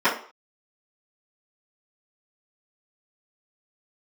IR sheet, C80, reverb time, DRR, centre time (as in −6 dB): 13.5 dB, 0.45 s, −15.0 dB, 25 ms